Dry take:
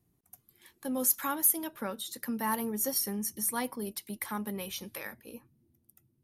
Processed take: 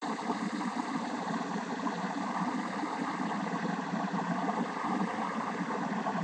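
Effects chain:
extreme stretch with random phases 43×, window 1.00 s, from 0:02.30
cochlear-implant simulation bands 16
pitch vibrato 0.44 Hz 59 cents

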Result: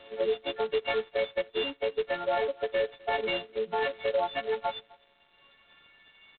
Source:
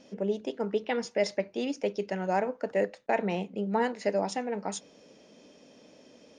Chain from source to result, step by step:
every partial snapped to a pitch grid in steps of 4 semitones
high-pass filter 69 Hz 12 dB per octave
0:00.47–0:00.87: mains-hum notches 60/120/180/240/300/360/420/480/540 Hz
in parallel at −12 dB: soft clipping −21.5 dBFS, distortion −15 dB
on the sum: parametric band 260 Hz −6.5 dB 1.6 octaves
reverb reduction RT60 1.5 s
high-pass filter sweep 440 Hz → 2,100 Hz, 0:04.51–0:06.21
brickwall limiter −20 dBFS, peak gain reduction 9.5 dB
on a send: single-tap delay 255 ms −24 dB
on the sum: G.726 16 kbit/s 8,000 Hz

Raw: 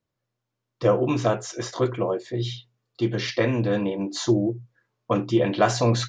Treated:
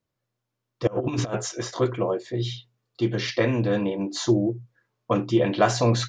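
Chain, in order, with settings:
0:00.87–0:01.49: compressor whose output falls as the input rises −26 dBFS, ratio −0.5

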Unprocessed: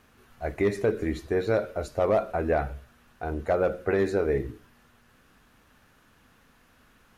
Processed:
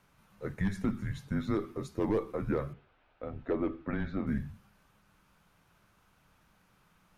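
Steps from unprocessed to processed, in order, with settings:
0:02.73–0:04.27: loudspeaker in its box 150–3,800 Hz, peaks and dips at 370 Hz −6 dB, 920 Hz +5 dB, 1,300 Hz −5 dB
frequency shifter −210 Hz
level −6.5 dB

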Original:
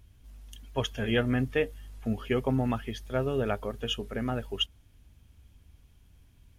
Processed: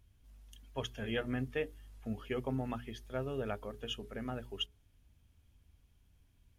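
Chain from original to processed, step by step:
mains-hum notches 60/120/180/240/300/360/420 Hz
level −8.5 dB

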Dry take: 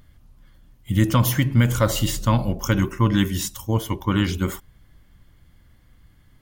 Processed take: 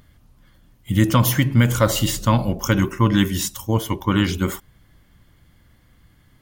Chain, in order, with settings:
low-shelf EQ 61 Hz −8.5 dB
level +3 dB

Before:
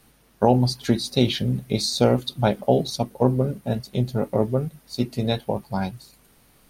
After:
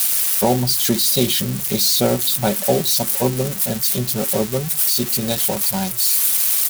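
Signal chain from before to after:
spike at every zero crossing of −12 dBFS
comb filter 5.3 ms, depth 47%

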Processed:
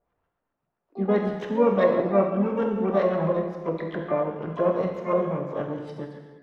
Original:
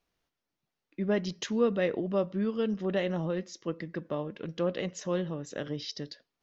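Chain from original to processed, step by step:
auto-filter low-pass saw up 7.6 Hz 550–1,600 Hz
reverb whose tail is shaped and stops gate 470 ms falling, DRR 1 dB
pitch-shifted copies added +3 semitones −12 dB, +12 semitones −12 dB
level +1.5 dB

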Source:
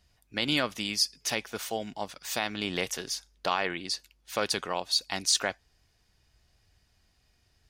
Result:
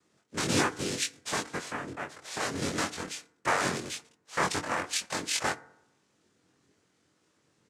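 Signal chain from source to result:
bass and treble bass +1 dB, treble −13 dB
0:01.55–0:02.40: downward compressor, threshold −33 dBFS, peak gain reduction 7 dB
cochlear-implant simulation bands 3
double-tracking delay 22 ms −2.5 dB
feedback delay network reverb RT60 0.78 s, low-frequency decay 0.95×, high-frequency decay 0.35×, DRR 15.5 dB

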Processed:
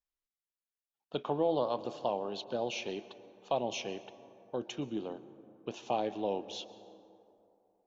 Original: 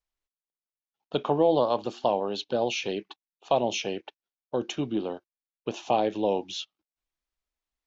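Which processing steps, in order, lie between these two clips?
dense smooth reverb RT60 2.9 s, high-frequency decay 0.4×, pre-delay 105 ms, DRR 15 dB
level −8 dB

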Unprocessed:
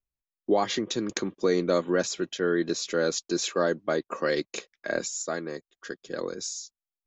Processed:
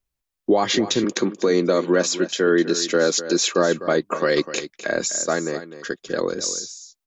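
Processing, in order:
0:01.04–0:03.51: high-pass filter 170 Hz 24 dB per octave
brickwall limiter −17.5 dBFS, peak gain reduction 6 dB
single-tap delay 252 ms −13 dB
level +9 dB

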